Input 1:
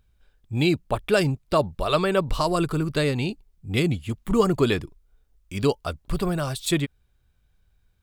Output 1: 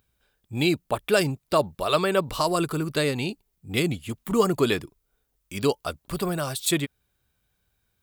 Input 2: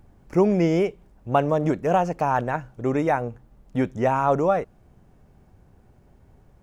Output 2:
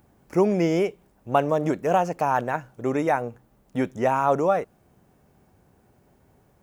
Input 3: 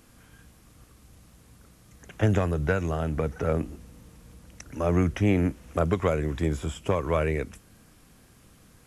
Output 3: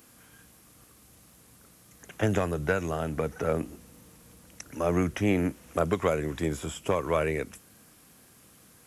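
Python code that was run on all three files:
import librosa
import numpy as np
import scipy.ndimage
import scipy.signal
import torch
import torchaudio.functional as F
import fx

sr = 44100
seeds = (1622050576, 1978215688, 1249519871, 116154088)

y = fx.highpass(x, sr, hz=190.0, slope=6)
y = fx.high_shelf(y, sr, hz=9900.0, db=10.5)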